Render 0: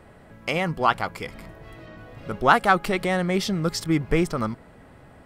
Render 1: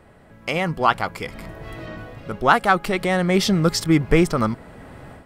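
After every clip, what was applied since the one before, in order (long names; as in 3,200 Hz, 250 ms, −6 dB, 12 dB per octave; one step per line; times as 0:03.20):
automatic gain control gain up to 11 dB
level −1 dB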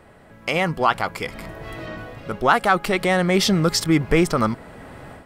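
low-shelf EQ 280 Hz −4 dB
in parallel at +2.5 dB: brickwall limiter −12.5 dBFS, peak gain reduction 10.5 dB
on the sum: level −4.5 dB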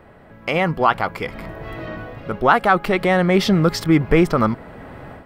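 parametric band 8,200 Hz −12.5 dB 1.8 octaves
level +3 dB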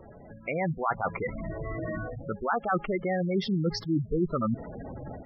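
reversed playback
downward compressor 4 to 1, threshold −24 dBFS, peak gain reduction 13 dB
reversed playback
gate on every frequency bin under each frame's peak −10 dB strong
level −1 dB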